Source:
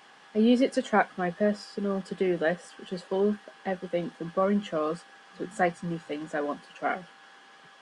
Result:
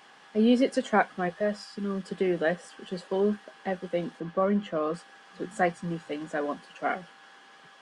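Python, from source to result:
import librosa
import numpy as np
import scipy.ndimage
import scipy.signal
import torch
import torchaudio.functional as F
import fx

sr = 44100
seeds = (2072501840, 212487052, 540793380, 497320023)

y = fx.peak_eq(x, sr, hz=fx.line((1.28, 190.0), (2.03, 820.0)), db=-13.5, octaves=0.69, at=(1.28, 2.03), fade=0.02)
y = fx.lowpass(y, sr, hz=3000.0, slope=6, at=(4.2, 4.94))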